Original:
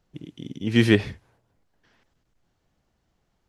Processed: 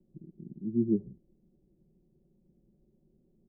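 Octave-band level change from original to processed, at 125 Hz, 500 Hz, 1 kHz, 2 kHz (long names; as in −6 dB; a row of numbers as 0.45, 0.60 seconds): −14.0 dB, −11.5 dB, below −35 dB, below −40 dB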